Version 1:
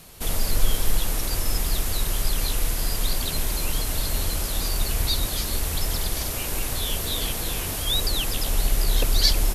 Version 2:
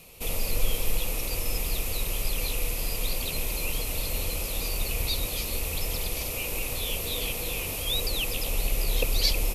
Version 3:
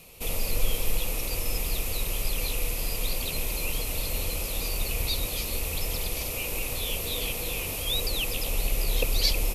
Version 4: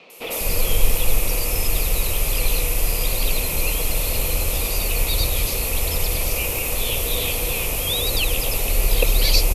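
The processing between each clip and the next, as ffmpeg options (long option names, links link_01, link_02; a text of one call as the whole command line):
ffmpeg -i in.wav -af "equalizer=frequency=500:width_type=o:width=0.33:gain=9,equalizer=frequency=1600:width_type=o:width=0.33:gain=-10,equalizer=frequency=2500:width_type=o:width=0.33:gain=12,equalizer=frequency=12500:width_type=o:width=0.33:gain=4,volume=-5.5dB" out.wav
ffmpeg -i in.wav -af anull out.wav
ffmpeg -i in.wav -filter_complex "[0:a]acrossover=split=230|4000[link_01][link_02][link_03];[link_03]adelay=100[link_04];[link_01]adelay=200[link_05];[link_05][link_02][link_04]amix=inputs=3:normalize=0,volume=8.5dB" out.wav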